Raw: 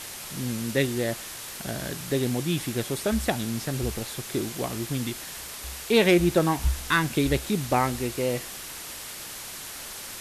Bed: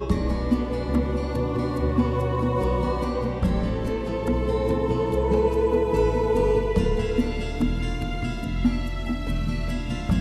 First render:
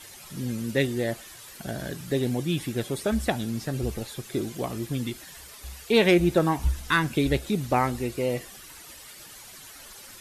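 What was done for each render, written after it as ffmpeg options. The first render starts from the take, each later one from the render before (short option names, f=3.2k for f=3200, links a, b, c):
-af "afftdn=nr=11:nf=-39"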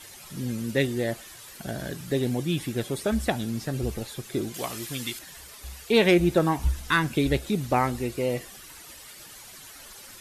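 -filter_complex "[0:a]asettb=1/sr,asplit=3[a][b][c];[a]atrim=end=4.544[d];[b]atrim=start=4.54:end=5.19,asetpts=PTS-STARTPTS,afade=t=in:d=0.004:c=qsin,afade=t=out:st=0.646:d=0.004:c=qsin,tiltshelf=f=800:g=-7.5[e];[c]atrim=start=5.186[f];[d][e]acrossfade=d=0.004:c1=hsin:c2=qsin[g];[g][f]acrossfade=d=0.004:c1=qsin:c2=hsin"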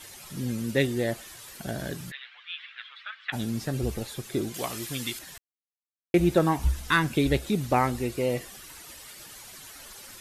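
-filter_complex "[0:a]asplit=3[a][b][c];[a]afade=t=out:st=2.1:d=0.02[d];[b]asuperpass=centerf=2100:order=8:qfactor=0.89,afade=t=in:st=2.1:d=0.02,afade=t=out:st=3.32:d=0.02[e];[c]afade=t=in:st=3.32:d=0.02[f];[d][e][f]amix=inputs=3:normalize=0,asplit=3[g][h][i];[g]atrim=end=5.38,asetpts=PTS-STARTPTS,afade=t=out:st=5.376:d=0.004:c=hsin[j];[h]atrim=start=5.38:end=6.14,asetpts=PTS-STARTPTS,volume=0[k];[i]atrim=start=6.14,asetpts=PTS-STARTPTS,afade=t=in:d=0.004:c=hsin[l];[j][k][l]concat=n=3:v=0:a=1"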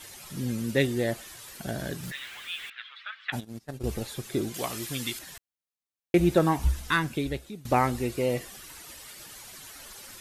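-filter_complex "[0:a]asettb=1/sr,asplit=3[a][b][c];[a]atrim=end=2.034[d];[b]atrim=start=2.03:end=2.7,asetpts=PTS-STARTPTS,afade=t=in:d=0.004:c=qsin,afade=t=out:st=0.666:d=0.004:c=qsin,aeval=exprs='val(0)+0.5*0.00944*sgn(val(0))':c=same[e];[c]atrim=start=2.696[f];[d][e]acrossfade=d=0.004:c1=hsin:c2=qsin[g];[g][f]acrossfade=d=0.004:c1=qsin:c2=hsin,asplit=3[h][i][j];[h]afade=t=out:st=3.39:d=0.02[k];[i]agate=range=-25dB:threshold=-28dB:ratio=16:release=100:detection=peak,afade=t=in:st=3.39:d=0.02,afade=t=out:st=3.88:d=0.02[l];[j]afade=t=in:st=3.88:d=0.02[m];[k][l][m]amix=inputs=3:normalize=0,asplit=2[n][o];[n]atrim=end=7.65,asetpts=PTS-STARTPTS,afade=t=out:st=6.71:d=0.94:silence=0.0794328[p];[o]atrim=start=7.65,asetpts=PTS-STARTPTS,afade=t=in:d=0.004:c=hsin:silence=0.0794328[q];[p][q]concat=n=2:v=0:a=1"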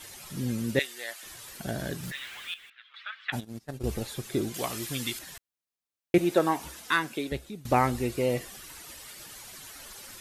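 -filter_complex "[0:a]asettb=1/sr,asplit=3[a][b][c];[a]atrim=end=0.794[d];[b]atrim=start=0.79:end=1.23,asetpts=PTS-STARTPTS,afade=t=in:d=0.004:c=qsin,afade=t=out:st=0.436:d=0.004:c=qsin,highpass=1.3k[e];[c]atrim=start=1.226[f];[d][e]acrossfade=d=0.004:c1=hsin:c2=qsin[g];[g][f]acrossfade=d=0.004:c1=qsin:c2=hsin,asettb=1/sr,asplit=3[h][i][j];[h]atrim=end=6.184[k];[i]atrim=start=6.18:end=7.32,asetpts=PTS-STARTPTS,afade=t=in:d=0.004:c=qsin,afade=t=out:st=1.136:d=0.004:c=qsin,highpass=300[l];[j]atrim=start=7.316[m];[k][l]acrossfade=d=0.004:c1=hsin:c2=qsin[n];[n][m]acrossfade=d=0.004:c1=qsin:c2=hsin,asplit=3[o][p][q];[o]atrim=end=2.542[r];[p]atrim=start=2.538:end=2.942,asetpts=PTS-STARTPTS,volume=-11dB[s];[q]atrim=start=2.938[t];[r][s]acrossfade=d=0.004:c1=hsin:c2=hsin[u];[u][t]acrossfade=d=0.004:c1=hsin:c2=hsin"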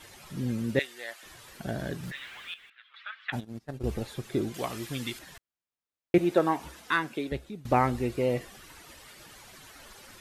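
-af "highshelf=f=4.4k:g=-10.5"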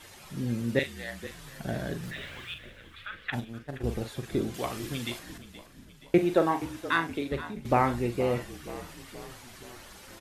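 -filter_complex "[0:a]asplit=2[a][b];[b]adelay=42,volume=-9.5dB[c];[a][c]amix=inputs=2:normalize=0,asplit=7[d][e][f][g][h][i][j];[e]adelay=474,afreqshift=-43,volume=-15dB[k];[f]adelay=948,afreqshift=-86,volume=-19.6dB[l];[g]adelay=1422,afreqshift=-129,volume=-24.2dB[m];[h]adelay=1896,afreqshift=-172,volume=-28.7dB[n];[i]adelay=2370,afreqshift=-215,volume=-33.3dB[o];[j]adelay=2844,afreqshift=-258,volume=-37.9dB[p];[d][k][l][m][n][o][p]amix=inputs=7:normalize=0"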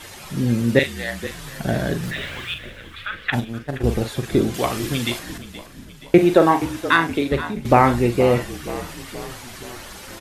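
-af "volume=11dB,alimiter=limit=-2dB:level=0:latency=1"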